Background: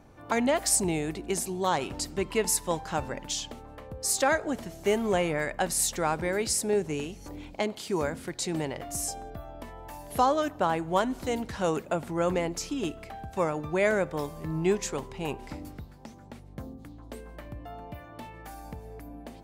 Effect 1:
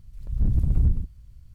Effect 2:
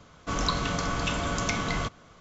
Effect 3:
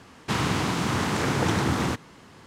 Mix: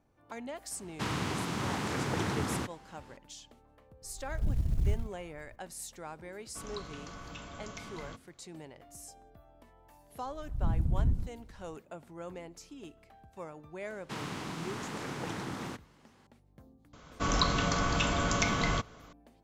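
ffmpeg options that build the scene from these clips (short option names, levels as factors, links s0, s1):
-filter_complex "[3:a]asplit=2[s0][s1];[1:a]asplit=2[s2][s3];[2:a]asplit=2[s4][s5];[0:a]volume=0.15[s6];[s2]acrusher=bits=8:mode=log:mix=0:aa=0.000001[s7];[s3]equalizer=f=250:t=o:w=2.1:g=4[s8];[s1]highpass=120[s9];[s0]atrim=end=2.46,asetpts=PTS-STARTPTS,volume=0.376,afade=t=in:d=0.004:c=hsin,afade=t=out:st=2.456:d=0.004:c=hsin,adelay=710[s10];[s7]atrim=end=1.54,asetpts=PTS-STARTPTS,volume=0.376,afade=t=in:d=0.004:c=hsin,afade=t=out:st=1.536:d=0.004:c=hsin,adelay=4020[s11];[s4]atrim=end=2.2,asetpts=PTS-STARTPTS,volume=0.141,afade=t=in:d=0.004:c=hsin,afade=t=out:st=2.196:d=0.004:c=hsin,adelay=6280[s12];[s8]atrim=end=1.54,asetpts=PTS-STARTPTS,volume=0.376,afade=t=in:d=0.004:c=hsin,afade=t=out:st=1.536:d=0.004:c=hsin,adelay=10220[s13];[s9]atrim=end=2.46,asetpts=PTS-STARTPTS,volume=0.211,afade=t=in:d=0.004:c=hsin,afade=t=out:st=2.456:d=0.004:c=hsin,adelay=13810[s14];[s5]atrim=end=2.2,asetpts=PTS-STARTPTS,volume=0.944,afade=t=in:d=0.004:c=hsin,afade=t=out:st=2.196:d=0.004:c=hsin,adelay=16930[s15];[s6][s10][s11][s12][s13][s14][s15]amix=inputs=7:normalize=0"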